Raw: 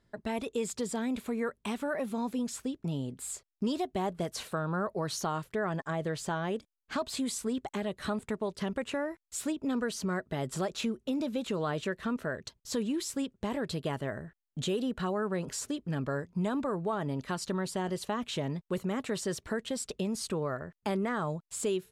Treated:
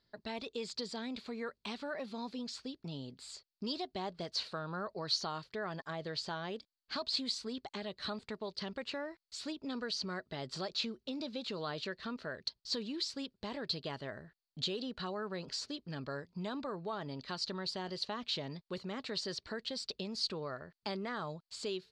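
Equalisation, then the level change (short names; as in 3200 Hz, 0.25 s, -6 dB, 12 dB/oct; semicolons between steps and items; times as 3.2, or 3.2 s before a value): synth low-pass 4500 Hz, resonance Q 6.6; low shelf 340 Hz -4.5 dB; -6.5 dB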